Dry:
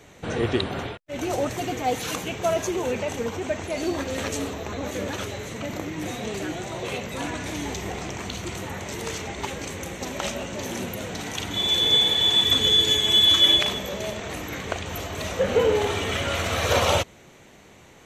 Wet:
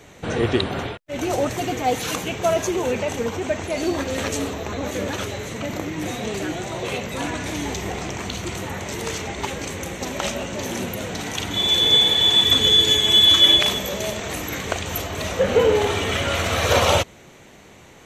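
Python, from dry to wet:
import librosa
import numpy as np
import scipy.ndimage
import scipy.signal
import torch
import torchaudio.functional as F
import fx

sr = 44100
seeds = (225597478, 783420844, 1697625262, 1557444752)

y = fx.high_shelf(x, sr, hz=5800.0, db=7.5, at=(13.63, 15.02))
y = y * 10.0 ** (3.5 / 20.0)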